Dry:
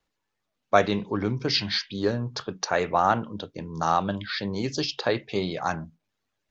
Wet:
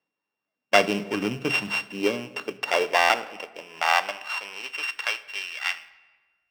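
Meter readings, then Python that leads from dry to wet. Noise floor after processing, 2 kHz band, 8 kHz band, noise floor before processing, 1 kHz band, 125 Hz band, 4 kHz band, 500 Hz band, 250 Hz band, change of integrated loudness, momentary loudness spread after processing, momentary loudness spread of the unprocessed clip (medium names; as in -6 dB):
under -85 dBFS, +7.5 dB, no reading, -81 dBFS, -0.5 dB, -10.0 dB, +0.5 dB, -1.0 dB, -3.5 dB, +1.5 dB, 12 LU, 10 LU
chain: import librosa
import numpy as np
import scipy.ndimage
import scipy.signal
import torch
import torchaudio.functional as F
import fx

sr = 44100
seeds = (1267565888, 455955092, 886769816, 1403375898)

p1 = np.r_[np.sort(x[:len(x) // 16 * 16].reshape(-1, 16), axis=1).ravel(), x[len(x) // 16 * 16:]]
p2 = scipy.signal.sosfilt(scipy.signal.butter(2, 4600.0, 'lowpass', fs=sr, output='sos'), p1)
p3 = fx.low_shelf(p2, sr, hz=320.0, db=-6.5)
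p4 = fx.filter_sweep_highpass(p3, sr, from_hz=180.0, to_hz=1800.0, start_s=1.56, end_s=5.51, q=1.2)
p5 = fx.quant_companded(p4, sr, bits=4)
p6 = p4 + (p5 * librosa.db_to_amplitude(-9.0))
p7 = fx.room_shoebox(p6, sr, seeds[0], volume_m3=1400.0, walls='mixed', distance_m=0.32)
p8 = fx.buffer_glitch(p7, sr, at_s=(2.99,), block=512, repeats=8)
y = p8 * librosa.db_to_amplitude(-1.0)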